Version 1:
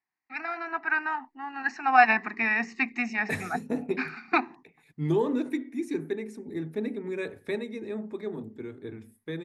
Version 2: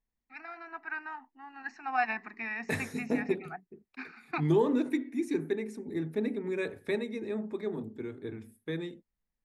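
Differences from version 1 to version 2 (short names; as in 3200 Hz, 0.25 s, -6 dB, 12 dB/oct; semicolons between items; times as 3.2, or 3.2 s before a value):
first voice -11.0 dB; second voice: entry -0.60 s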